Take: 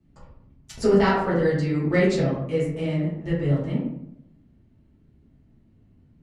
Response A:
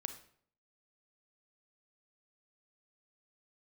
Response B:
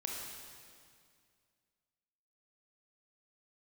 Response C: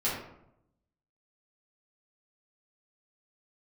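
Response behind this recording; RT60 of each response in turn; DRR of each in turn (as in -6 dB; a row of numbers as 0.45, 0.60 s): C; 0.60, 2.2, 0.80 s; 8.0, -1.5, -9.5 dB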